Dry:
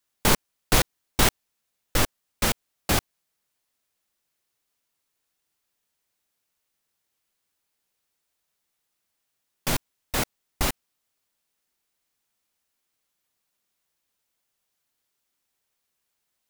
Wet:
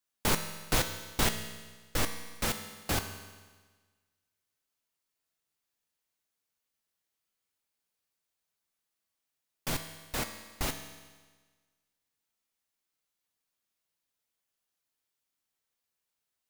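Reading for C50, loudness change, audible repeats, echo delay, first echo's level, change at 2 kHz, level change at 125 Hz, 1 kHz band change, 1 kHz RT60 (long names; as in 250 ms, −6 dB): 8.5 dB, −7.5 dB, no echo audible, no echo audible, no echo audible, −7.0 dB, −7.0 dB, −7.5 dB, 1.4 s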